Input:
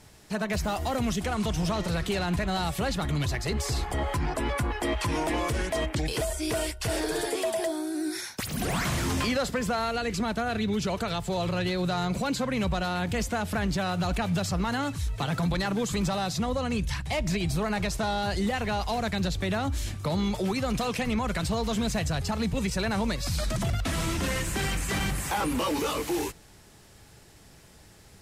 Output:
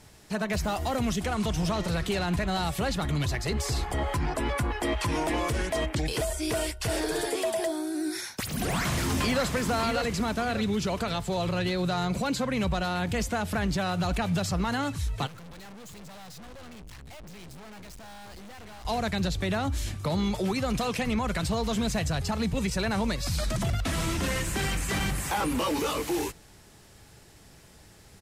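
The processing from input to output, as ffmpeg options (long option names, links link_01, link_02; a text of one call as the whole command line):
ffmpeg -i in.wav -filter_complex "[0:a]asplit=2[link_01][link_02];[link_02]afade=type=in:start_time=8.29:duration=0.01,afade=type=out:start_time=9.46:duration=0.01,aecho=0:1:590|1180|1770|2360|2950:0.501187|0.225534|0.10149|0.0456707|0.0205518[link_03];[link_01][link_03]amix=inputs=2:normalize=0,asettb=1/sr,asplit=3[link_04][link_05][link_06];[link_04]atrim=end=15.274[link_07];[link_05]atrim=start=15.27:end=18.85,asetpts=PTS-STARTPTS,afade=type=in:duration=0.004:curve=qsin,afade=type=out:start_time=3.576:duration=0.004:curve=qsin,aeval=exprs='(tanh(178*val(0)+0.65)-tanh(0.65))/178':channel_layout=same[link_08];[link_06]atrim=start=18.846[link_09];[link_07][link_08]acrossfade=duration=0.004:curve1=hsin:curve2=qsin[link_10];[link_10][link_09]acrossfade=duration=0.004:curve1=qsin:curve2=hsin" out.wav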